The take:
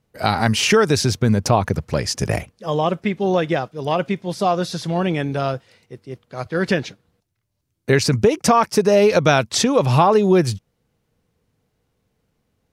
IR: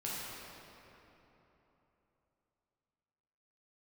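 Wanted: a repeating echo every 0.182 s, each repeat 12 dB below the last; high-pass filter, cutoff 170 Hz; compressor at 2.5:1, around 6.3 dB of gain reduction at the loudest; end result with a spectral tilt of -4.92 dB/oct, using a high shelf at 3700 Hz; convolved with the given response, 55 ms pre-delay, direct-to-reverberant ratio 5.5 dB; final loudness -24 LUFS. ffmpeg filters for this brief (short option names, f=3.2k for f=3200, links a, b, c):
-filter_complex "[0:a]highpass=170,highshelf=f=3.7k:g=-5.5,acompressor=threshold=-20dB:ratio=2.5,aecho=1:1:182|364|546:0.251|0.0628|0.0157,asplit=2[a][b];[1:a]atrim=start_sample=2205,adelay=55[c];[b][c]afir=irnorm=-1:irlink=0,volume=-9dB[d];[a][d]amix=inputs=2:normalize=0,volume=-0.5dB"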